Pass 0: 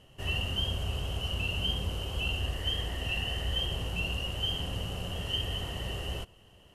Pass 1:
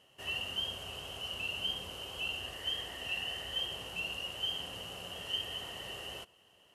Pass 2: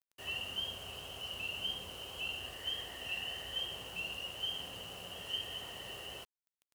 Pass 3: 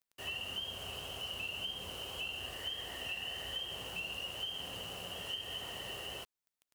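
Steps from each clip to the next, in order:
HPF 610 Hz 6 dB/oct; gain -2.5 dB
bit-crush 9-bit; gain -2.5 dB
compressor, threshold -40 dBFS, peak gain reduction 7.5 dB; gain +3 dB

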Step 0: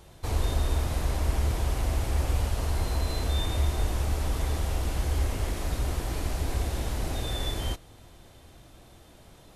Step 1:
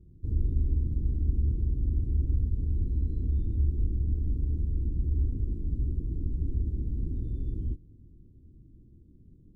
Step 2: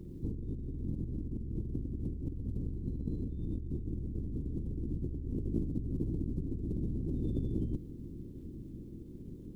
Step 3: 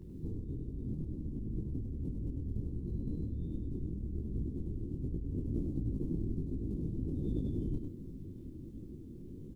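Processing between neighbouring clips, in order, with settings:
inverse Chebyshev low-pass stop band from 630 Hz, stop band 40 dB
spectral limiter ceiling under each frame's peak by 14 dB; negative-ratio compressor -36 dBFS, ratio -1; crackle 48/s -66 dBFS
echo 99 ms -4.5 dB; detuned doubles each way 47 cents; gain +1.5 dB

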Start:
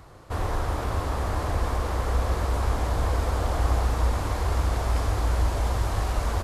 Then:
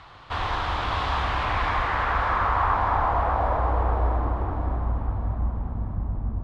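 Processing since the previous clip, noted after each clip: low-pass sweep 3400 Hz -> 210 Hz, 1.14–5.01; resonant low shelf 670 Hz -8 dB, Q 1.5; split-band echo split 450 Hz, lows 0.15 s, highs 0.595 s, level -5 dB; gain +4 dB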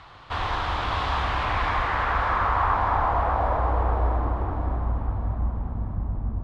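nothing audible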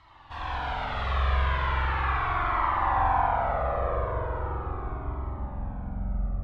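spring tank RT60 3.7 s, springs 45 ms, chirp 45 ms, DRR -7.5 dB; cascading flanger falling 0.38 Hz; gain -7 dB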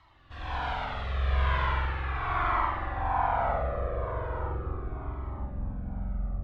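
rotary speaker horn 1.1 Hz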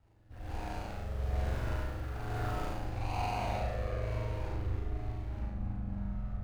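median filter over 41 samples; on a send: flutter echo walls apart 6.1 m, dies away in 0.67 s; on the sum: gain -3.5 dB

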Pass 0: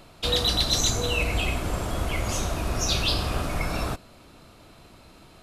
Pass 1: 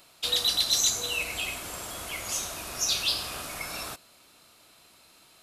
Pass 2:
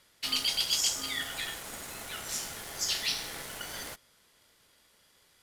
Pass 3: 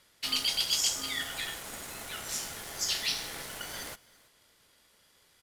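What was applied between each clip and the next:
tilt +3.5 dB/oct; gain -7.5 dB
in parallel at -6.5 dB: bit-crush 6-bit; on the sum: ring modulator 750 Hz; gain -4.5 dB
echo 0.333 s -23 dB

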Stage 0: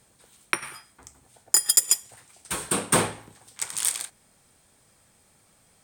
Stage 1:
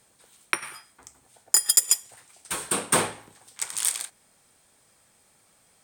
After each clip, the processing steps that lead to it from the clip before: low shelf 230 Hz -8 dB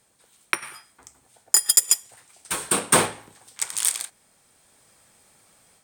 AGC gain up to 6.5 dB; in parallel at -10.5 dB: sample gate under -20.5 dBFS; on the sum: gain -2.5 dB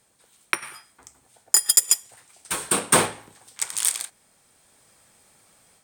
nothing audible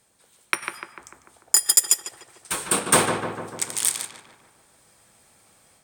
darkening echo 0.148 s, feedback 63%, low-pass 2100 Hz, level -5 dB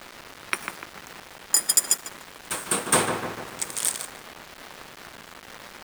band noise 150–2000 Hz -37 dBFS; sample gate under -32 dBFS; gain -3 dB

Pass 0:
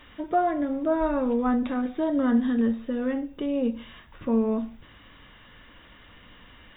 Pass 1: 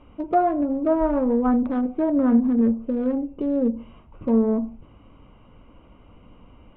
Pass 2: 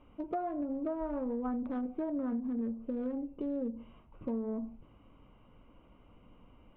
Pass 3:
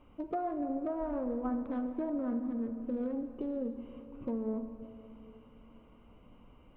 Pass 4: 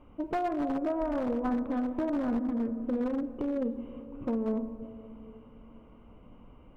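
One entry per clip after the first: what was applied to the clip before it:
Wiener smoothing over 25 samples; treble ducked by the level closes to 1300 Hz, closed at -23 dBFS; gain +4.5 dB
bell 74 Hz -3.5 dB; compressor 6:1, threshold -23 dBFS, peak gain reduction 9.5 dB; gain -9 dB
reverb RT60 3.4 s, pre-delay 33 ms, DRR 8 dB
one-sided fold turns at -31 dBFS; mismatched tape noise reduction decoder only; gain +5 dB

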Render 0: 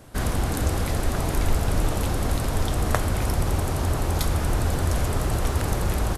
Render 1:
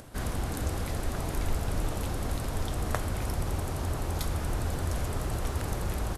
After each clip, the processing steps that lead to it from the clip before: upward compressor, threshold -34 dBFS; gain -7.5 dB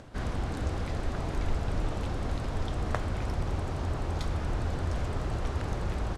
air absorption 100 m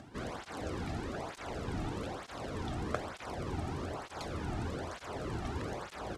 tape flanging out of phase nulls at 1.1 Hz, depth 2.1 ms

